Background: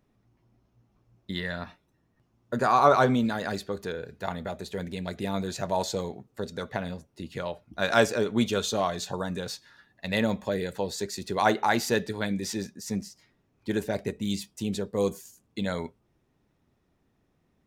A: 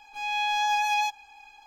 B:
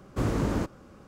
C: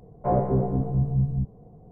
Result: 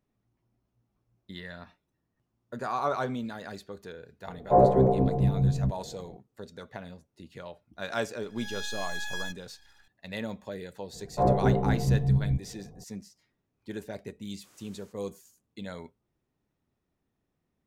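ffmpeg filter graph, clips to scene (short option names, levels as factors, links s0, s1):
-filter_complex "[3:a]asplit=2[s0][s1];[0:a]volume=0.335[s2];[s0]equalizer=f=540:w=0.64:g=8.5[s3];[1:a]aeval=exprs='abs(val(0))':c=same[s4];[2:a]aderivative[s5];[s3]atrim=end=1.91,asetpts=PTS-STARTPTS,volume=0.75,afade=t=in:d=0.004:c=hsin,afade=t=out:st=1.906:d=0.004:c=hsin,adelay=4260[s6];[s4]atrim=end=1.66,asetpts=PTS-STARTPTS,volume=0.398,afade=t=in:d=0.004:c=hsin,afade=t=out:st=1.656:d=0.004:c=hsin,adelay=8220[s7];[s1]atrim=end=1.91,asetpts=PTS-STARTPTS,volume=0.944,afade=t=in:d=0.004:c=hsin,afade=t=out:st=1.906:d=0.004:c=hsin,adelay=10930[s8];[s5]atrim=end=1.07,asetpts=PTS-STARTPTS,volume=0.211,afade=t=in:d=0.004:c=hsin,afade=t=out:st=1.066:d=0.004:c=hsin,adelay=14270[s9];[s2][s6][s7][s8][s9]amix=inputs=5:normalize=0"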